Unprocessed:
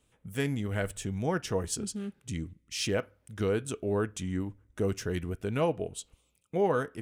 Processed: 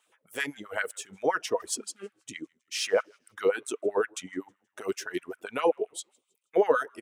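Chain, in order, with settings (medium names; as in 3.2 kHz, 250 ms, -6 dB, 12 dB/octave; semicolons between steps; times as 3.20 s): frequency-shifting echo 159 ms, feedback 45%, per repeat -81 Hz, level -19.5 dB; reverb removal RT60 1.8 s; LFO high-pass sine 7.7 Hz 350–1700 Hz; trim +2 dB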